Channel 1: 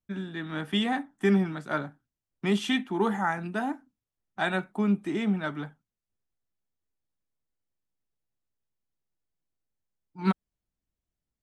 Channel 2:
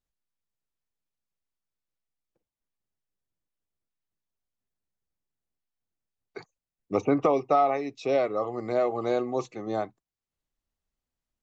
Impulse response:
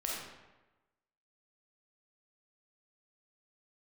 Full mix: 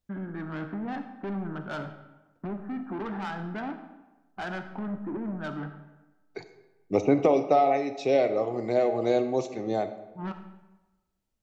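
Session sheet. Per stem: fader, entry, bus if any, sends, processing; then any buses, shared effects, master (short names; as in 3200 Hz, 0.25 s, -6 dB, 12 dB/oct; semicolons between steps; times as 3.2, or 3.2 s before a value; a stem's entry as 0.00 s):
+0.5 dB, 0.00 s, send -7.5 dB, steep low-pass 1700 Hz 96 dB/oct; compressor 2.5:1, threshold -30 dBFS, peak gain reduction 8 dB; soft clip -33.5 dBFS, distortion -9 dB
+0.5 dB, 0.00 s, send -10 dB, bell 1200 Hz -12.5 dB 0.47 oct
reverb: on, RT60 1.1 s, pre-delay 5 ms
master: dry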